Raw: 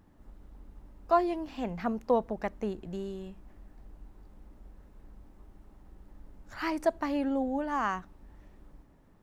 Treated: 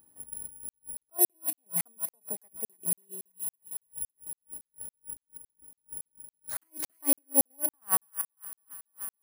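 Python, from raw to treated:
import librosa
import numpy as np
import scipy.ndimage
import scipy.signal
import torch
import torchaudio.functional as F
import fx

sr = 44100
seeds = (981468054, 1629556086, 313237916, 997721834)

p1 = (np.kron(x[::4], np.eye(4)[0]) * 4)[:len(x)]
p2 = fx.highpass(p1, sr, hz=250.0, slope=6)
p3 = p2 + fx.echo_wet_highpass(p2, sr, ms=289, feedback_pct=64, hz=1500.0, wet_db=-7.5, dry=0)
p4 = fx.step_gate(p3, sr, bpm=190, pattern='..x.xx..xxxxx', floor_db=-12.0, edge_ms=4.5)
p5 = fx.peak_eq(p4, sr, hz=1500.0, db=-4.5, octaves=0.99)
p6 = fx.hum_notches(p5, sr, base_hz=60, count=6)
p7 = fx.buffer_crackle(p6, sr, first_s=0.69, period_s=0.28, block=2048, kind='zero')
p8 = fx.attack_slew(p7, sr, db_per_s=440.0)
y = F.gain(torch.from_numpy(p8), 5.5).numpy()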